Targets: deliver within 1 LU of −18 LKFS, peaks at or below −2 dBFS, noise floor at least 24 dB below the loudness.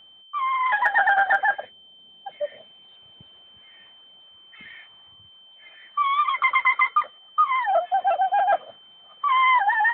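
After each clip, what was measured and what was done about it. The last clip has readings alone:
interfering tone 3,100 Hz; level of the tone −48 dBFS; integrated loudness −21.5 LKFS; sample peak −9.5 dBFS; target loudness −18.0 LKFS
→ notch filter 3,100 Hz, Q 30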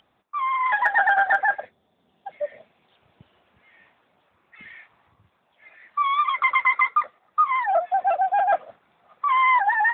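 interfering tone none found; integrated loudness −21.5 LKFS; sample peak −9.5 dBFS; target loudness −18.0 LKFS
→ level +3.5 dB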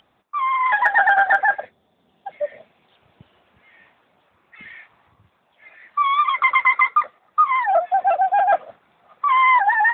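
integrated loudness −18.0 LKFS; sample peak −6.0 dBFS; background noise floor −64 dBFS

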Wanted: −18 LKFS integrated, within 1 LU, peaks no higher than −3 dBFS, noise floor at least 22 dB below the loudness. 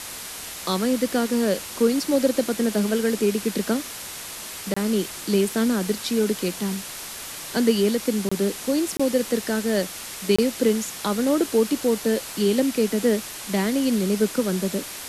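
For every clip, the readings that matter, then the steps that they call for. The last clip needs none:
number of dropouts 4; longest dropout 25 ms; background noise floor −36 dBFS; target noise floor −46 dBFS; integrated loudness −23.5 LKFS; sample peak −7.0 dBFS; target loudness −18.0 LKFS
→ repair the gap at 0:04.74/0:08.29/0:08.97/0:10.36, 25 ms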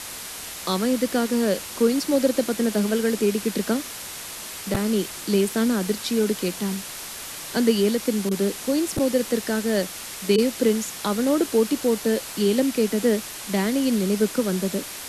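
number of dropouts 0; background noise floor −36 dBFS; target noise floor −46 dBFS
→ broadband denoise 10 dB, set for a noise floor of −36 dBFS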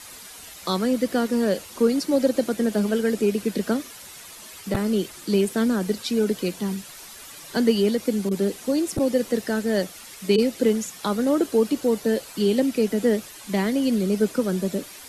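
background noise floor −43 dBFS; target noise floor −46 dBFS
→ broadband denoise 6 dB, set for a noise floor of −43 dBFS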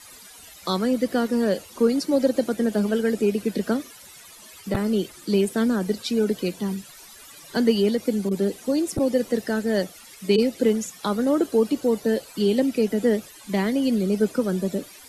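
background noise floor −46 dBFS; integrated loudness −23.5 LKFS; sample peak −7.0 dBFS; target loudness −18.0 LKFS
→ level +5.5 dB
brickwall limiter −3 dBFS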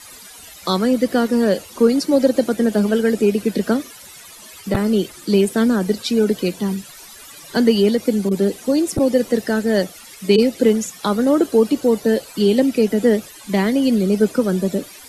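integrated loudness −18.0 LKFS; sample peak −3.0 dBFS; background noise floor −41 dBFS

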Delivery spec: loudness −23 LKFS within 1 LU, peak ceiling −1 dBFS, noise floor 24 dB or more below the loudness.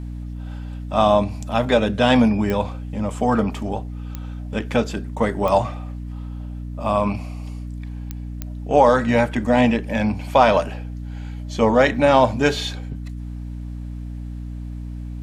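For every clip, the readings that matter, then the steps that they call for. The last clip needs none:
number of clicks 5; mains hum 60 Hz; hum harmonics up to 300 Hz; level of the hum −28 dBFS; integrated loudness −19.5 LKFS; sample peak −2.5 dBFS; target loudness −23.0 LKFS
→ click removal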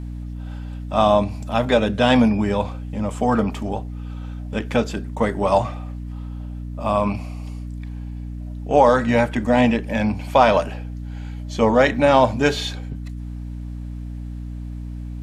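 number of clicks 0; mains hum 60 Hz; hum harmonics up to 300 Hz; level of the hum −28 dBFS
→ hum removal 60 Hz, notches 5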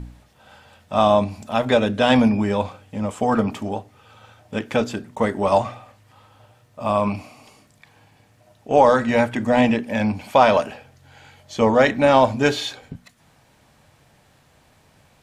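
mains hum none found; integrated loudness −19.5 LKFS; sample peak −2.0 dBFS; target loudness −23.0 LKFS
→ level −3.5 dB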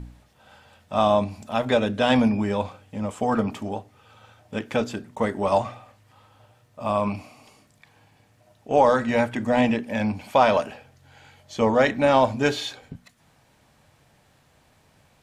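integrated loudness −23.0 LKFS; sample peak −5.5 dBFS; background noise floor −61 dBFS

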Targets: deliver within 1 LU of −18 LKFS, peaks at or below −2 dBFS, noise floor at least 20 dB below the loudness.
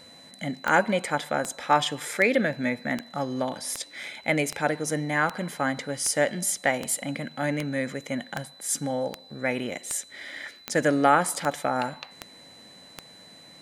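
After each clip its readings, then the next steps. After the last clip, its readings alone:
number of clicks 17; interfering tone 4,000 Hz; level of the tone −49 dBFS; integrated loudness −27.0 LKFS; sample peak −6.0 dBFS; target loudness −18.0 LKFS
→ click removal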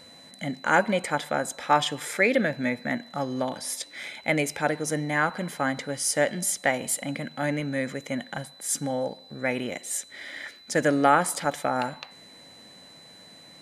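number of clicks 0; interfering tone 4,000 Hz; level of the tone −49 dBFS
→ notch filter 4,000 Hz, Q 30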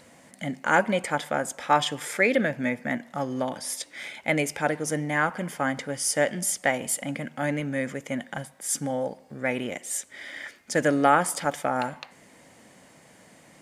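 interfering tone none found; integrated loudness −27.0 LKFS; sample peak −6.0 dBFS; target loudness −18.0 LKFS
→ level +9 dB
brickwall limiter −2 dBFS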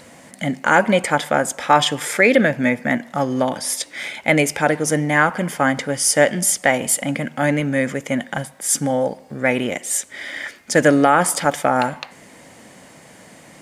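integrated loudness −18.5 LKFS; sample peak −2.0 dBFS; background noise floor −46 dBFS

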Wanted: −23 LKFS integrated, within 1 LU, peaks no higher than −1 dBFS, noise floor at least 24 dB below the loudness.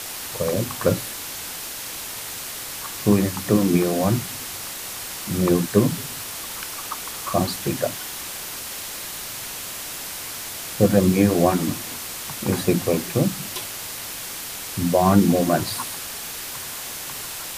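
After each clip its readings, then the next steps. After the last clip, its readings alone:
background noise floor −33 dBFS; target noise floor −48 dBFS; integrated loudness −24.0 LKFS; sample peak −3.0 dBFS; target loudness −23.0 LKFS
→ broadband denoise 15 dB, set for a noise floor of −33 dBFS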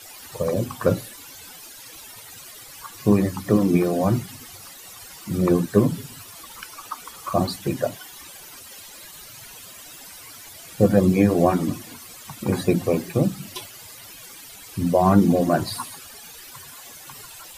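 background noise floor −43 dBFS; target noise floor −46 dBFS
→ broadband denoise 6 dB, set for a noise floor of −43 dBFS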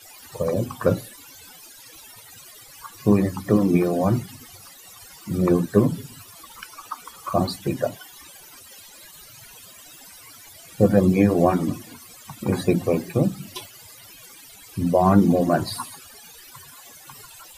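background noise floor −46 dBFS; integrated loudness −21.5 LKFS; sample peak −3.0 dBFS; target loudness −23.0 LKFS
→ level −1.5 dB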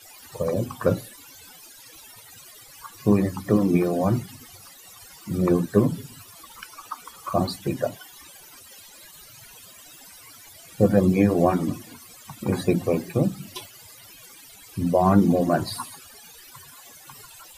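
integrated loudness −23.0 LKFS; sample peak −4.5 dBFS; background noise floor −48 dBFS

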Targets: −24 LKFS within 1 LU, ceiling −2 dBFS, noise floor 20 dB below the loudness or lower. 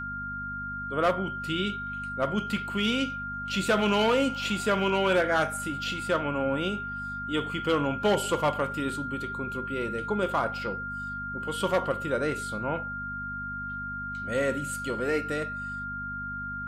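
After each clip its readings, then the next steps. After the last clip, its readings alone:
mains hum 50 Hz; hum harmonics up to 250 Hz; level of the hum −39 dBFS; interfering tone 1,400 Hz; level of the tone −33 dBFS; integrated loudness −29.0 LKFS; sample peak −15.5 dBFS; target loudness −24.0 LKFS
→ hum removal 50 Hz, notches 5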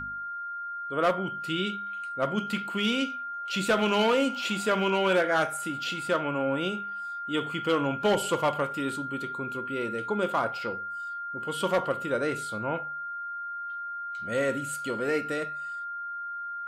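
mains hum none found; interfering tone 1,400 Hz; level of the tone −33 dBFS
→ notch filter 1,400 Hz, Q 30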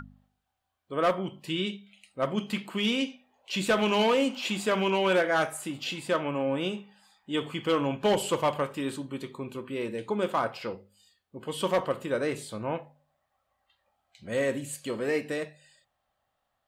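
interfering tone none found; integrated loudness −29.5 LKFS; sample peak −16.0 dBFS; target loudness −24.0 LKFS
→ level +5.5 dB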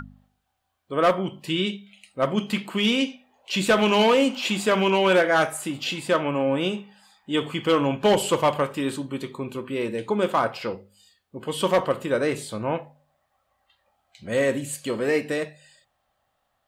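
integrated loudness −24.0 LKFS; sample peak −10.5 dBFS; background noise floor −74 dBFS

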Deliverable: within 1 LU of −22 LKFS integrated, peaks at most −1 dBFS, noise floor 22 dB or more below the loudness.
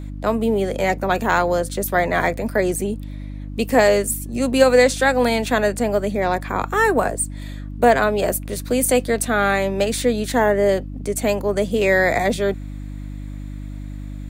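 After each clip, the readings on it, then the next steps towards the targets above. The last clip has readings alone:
mains hum 50 Hz; hum harmonics up to 300 Hz; level of the hum −29 dBFS; integrated loudness −19.5 LKFS; sample peak −2.0 dBFS; target loudness −22.0 LKFS
→ hum removal 50 Hz, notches 6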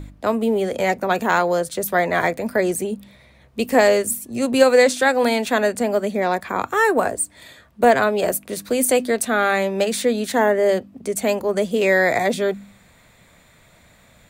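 mains hum none found; integrated loudness −19.5 LKFS; sample peak −2.5 dBFS; target loudness −22.0 LKFS
→ level −2.5 dB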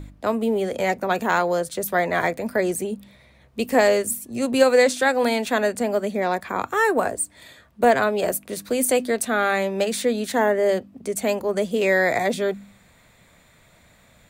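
integrated loudness −22.0 LKFS; sample peak −5.0 dBFS; background noise floor −55 dBFS

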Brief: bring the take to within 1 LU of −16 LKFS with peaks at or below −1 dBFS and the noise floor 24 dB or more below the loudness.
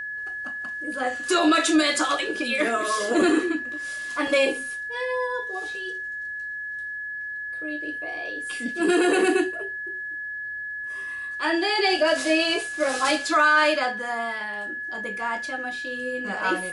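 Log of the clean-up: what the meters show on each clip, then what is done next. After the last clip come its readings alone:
interfering tone 1,700 Hz; level of the tone −30 dBFS; integrated loudness −24.5 LKFS; sample peak −8.5 dBFS; target loudness −16.0 LKFS
→ notch filter 1,700 Hz, Q 30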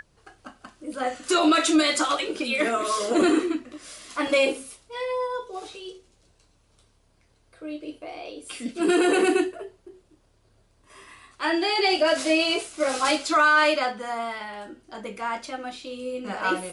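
interfering tone none found; integrated loudness −23.5 LKFS; sample peak −9.5 dBFS; target loudness −16.0 LKFS
→ level +7.5 dB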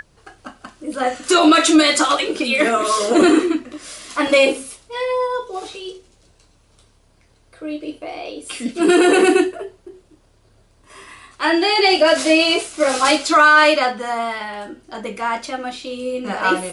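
integrated loudness −16.0 LKFS; sample peak −2.0 dBFS; background noise floor −56 dBFS

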